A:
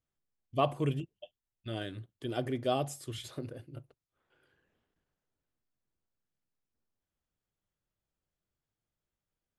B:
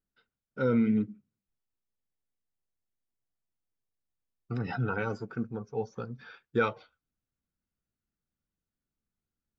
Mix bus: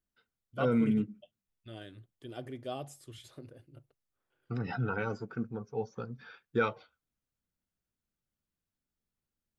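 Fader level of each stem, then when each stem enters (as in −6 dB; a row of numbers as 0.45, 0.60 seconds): −8.5, −2.0 decibels; 0.00, 0.00 seconds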